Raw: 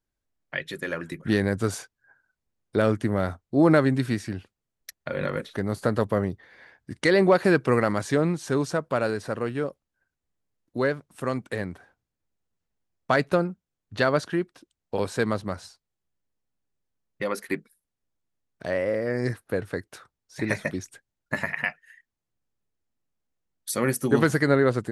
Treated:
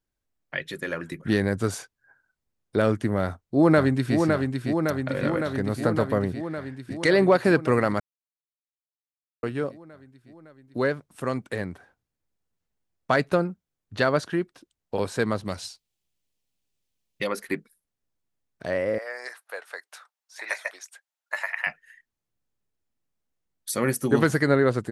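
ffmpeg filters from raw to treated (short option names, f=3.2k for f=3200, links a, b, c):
-filter_complex "[0:a]asplit=2[a][b];[b]afade=t=in:st=3.21:d=0.01,afade=t=out:st=4.17:d=0.01,aecho=0:1:560|1120|1680|2240|2800|3360|3920|4480|5040|5600|6160|6720:0.595662|0.446747|0.33506|0.251295|0.188471|0.141353|0.106015|0.0795113|0.0596335|0.0447251|0.0335438|0.0251579[c];[a][c]amix=inputs=2:normalize=0,asettb=1/sr,asplit=3[d][e][f];[d]atrim=end=15.454[g];[e]atrim=start=15.45:end=17.27,asetpts=PTS-STARTPTS,afade=t=in:d=0.004:c=qsin,afade=t=out:st=1.816:d=0.004:c=qsin,highshelf=f=2.1k:t=q:w=1.5:g=7.5[h];[f]atrim=start=17.266[i];[g][h]acrossfade=d=0.004:c1=hsin:c2=qsin[j];[j][i]acrossfade=d=0.004:c1=qsin:c2=hsin,asettb=1/sr,asplit=3[k][l][m];[k]atrim=end=18.984[n];[l]atrim=start=18.98:end=21.67,asetpts=PTS-STARTPTS,afade=t=in:d=0.004:c=qsin,afade=t=out:st=2.686:d=0.004:c=qsin,highpass=f=680:w=0.5412,highpass=f=680:w=1.3066[o];[m]atrim=start=21.666[p];[n][o]acrossfade=d=0.004:c1=hsin:c2=qsin[q];[q][p]acrossfade=d=0.004:c1=qsin:c2=hsin,asplit=3[r][s][t];[r]atrim=end=8,asetpts=PTS-STARTPTS,afade=t=out:st=7.996:d=0.004:c=hsin[u];[s]atrim=start=8:end=9.43,asetpts=PTS-STARTPTS,volume=0[v];[t]atrim=start=9.43,asetpts=PTS-STARTPTS,afade=t=in:d=0.004:c=hsin[w];[u][v][w]concat=n=3:v=0:a=1"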